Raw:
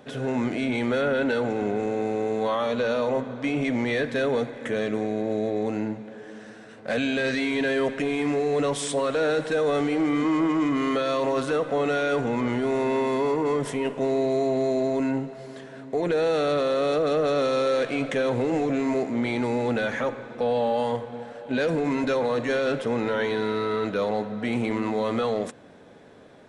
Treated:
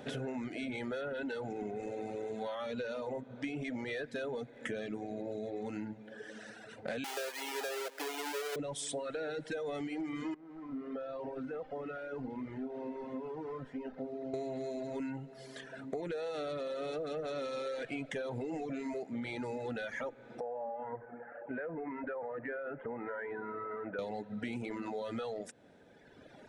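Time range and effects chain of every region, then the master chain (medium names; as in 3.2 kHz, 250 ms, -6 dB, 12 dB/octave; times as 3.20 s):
7.04–8.56 s: square wave that keeps the level + high-pass 420 Hz 24 dB/octave
10.34–14.34 s: one-bit delta coder 64 kbps, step -28.5 dBFS + low-pass 1.4 kHz + feedback comb 260 Hz, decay 0.46 s, mix 80%
20.40–23.99 s: steep low-pass 1.9 kHz + bass shelf 330 Hz -11.5 dB + compression 1.5:1, threshold -37 dBFS
whole clip: band-stop 1.1 kHz, Q 6.1; reverb removal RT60 1.8 s; compression, threshold -38 dBFS; trim +1 dB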